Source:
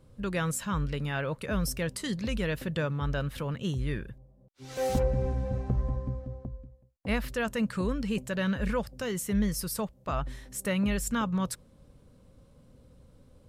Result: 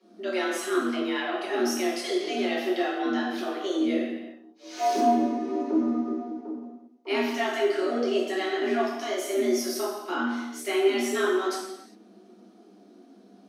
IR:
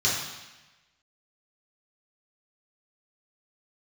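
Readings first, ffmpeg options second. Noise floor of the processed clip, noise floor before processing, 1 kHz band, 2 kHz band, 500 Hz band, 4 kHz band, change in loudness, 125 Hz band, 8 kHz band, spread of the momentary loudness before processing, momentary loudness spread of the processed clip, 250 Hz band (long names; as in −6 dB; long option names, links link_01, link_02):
−54 dBFS, −60 dBFS, +8.5 dB, +4.5 dB, +8.0 dB, +6.5 dB, +4.5 dB, below −20 dB, +0.5 dB, 9 LU, 10 LU, +4.5 dB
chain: -filter_complex "[0:a]flanger=delay=5.2:depth=8.7:regen=42:speed=0.49:shape=triangular,afreqshift=190[link_01];[1:a]atrim=start_sample=2205,afade=type=out:start_time=0.42:duration=0.01,atrim=end_sample=18963,asetrate=39690,aresample=44100[link_02];[link_01][link_02]afir=irnorm=-1:irlink=0,volume=-6dB"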